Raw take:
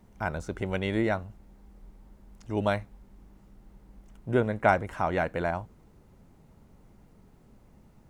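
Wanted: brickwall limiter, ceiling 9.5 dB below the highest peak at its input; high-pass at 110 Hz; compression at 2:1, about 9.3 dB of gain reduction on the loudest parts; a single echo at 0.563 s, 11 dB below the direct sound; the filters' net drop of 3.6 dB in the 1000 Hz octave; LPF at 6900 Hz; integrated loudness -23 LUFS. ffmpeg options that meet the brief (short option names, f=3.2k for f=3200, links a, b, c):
-af "highpass=110,lowpass=6.9k,equalizer=f=1k:t=o:g=-5.5,acompressor=threshold=-36dB:ratio=2,alimiter=level_in=3dB:limit=-24dB:level=0:latency=1,volume=-3dB,aecho=1:1:563:0.282,volume=19.5dB"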